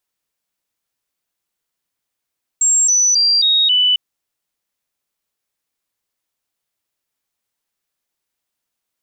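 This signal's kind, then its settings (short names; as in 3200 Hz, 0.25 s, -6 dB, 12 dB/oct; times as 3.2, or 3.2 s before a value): stepped sine 7520 Hz down, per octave 3, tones 5, 0.27 s, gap 0.00 s -10.5 dBFS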